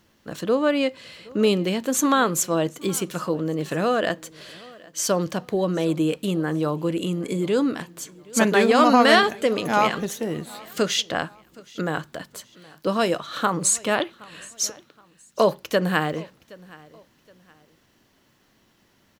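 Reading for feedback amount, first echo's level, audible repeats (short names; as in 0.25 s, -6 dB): 33%, -23.0 dB, 2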